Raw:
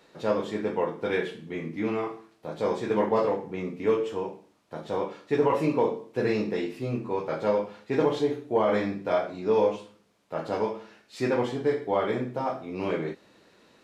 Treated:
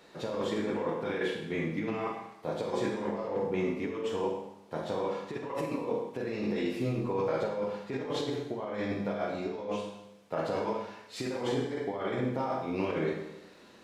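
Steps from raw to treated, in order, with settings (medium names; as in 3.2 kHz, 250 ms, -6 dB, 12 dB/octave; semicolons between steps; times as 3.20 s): compressor with a negative ratio -31 dBFS, ratio -1; Schroeder reverb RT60 0.86 s, combs from 31 ms, DRR 2.5 dB; trim -3 dB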